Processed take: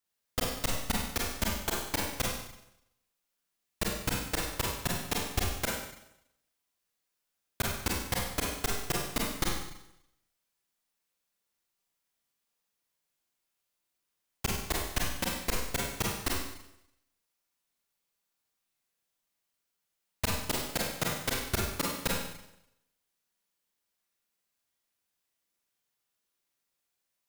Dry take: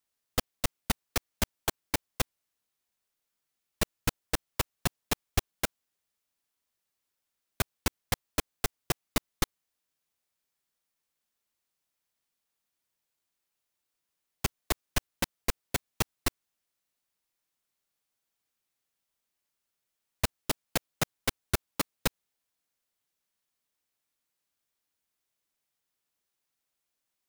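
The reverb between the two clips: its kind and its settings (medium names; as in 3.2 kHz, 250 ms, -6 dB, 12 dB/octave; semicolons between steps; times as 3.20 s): Schroeder reverb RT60 0.8 s, combs from 32 ms, DRR -3 dB; trim -3.5 dB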